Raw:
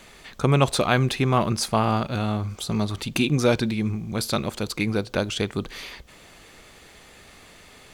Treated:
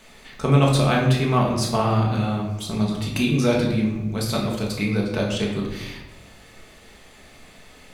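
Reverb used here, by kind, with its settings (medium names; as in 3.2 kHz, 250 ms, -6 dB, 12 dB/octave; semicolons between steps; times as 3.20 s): simulated room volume 340 m³, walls mixed, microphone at 1.5 m; trim -4 dB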